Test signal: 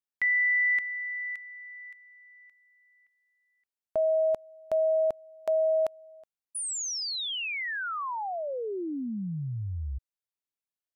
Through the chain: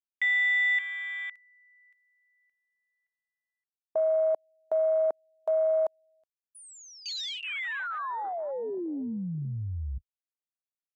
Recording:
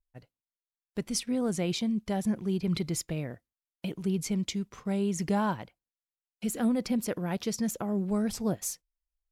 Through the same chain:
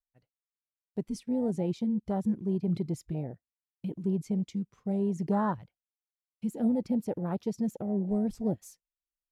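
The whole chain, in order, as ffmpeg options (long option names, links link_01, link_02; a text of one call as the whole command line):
ffmpeg -i in.wav -af "afwtdn=0.0282" out.wav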